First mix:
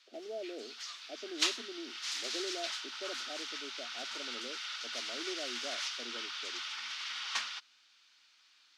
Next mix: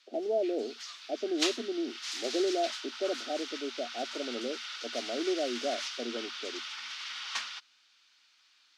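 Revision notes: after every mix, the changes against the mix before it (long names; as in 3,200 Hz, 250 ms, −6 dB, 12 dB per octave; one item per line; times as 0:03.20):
speech +12.0 dB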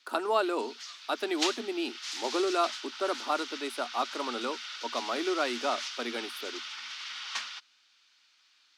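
speech: remove Butterworth low-pass 730 Hz 96 dB per octave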